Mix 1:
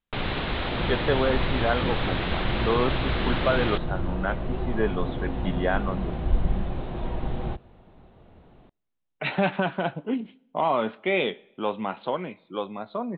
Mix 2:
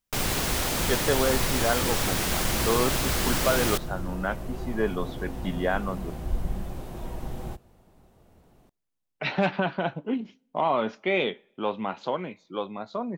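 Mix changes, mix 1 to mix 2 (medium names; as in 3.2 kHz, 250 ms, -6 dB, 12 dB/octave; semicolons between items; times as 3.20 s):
speech: send -7.5 dB; second sound -5.5 dB; master: remove steep low-pass 3.9 kHz 72 dB/octave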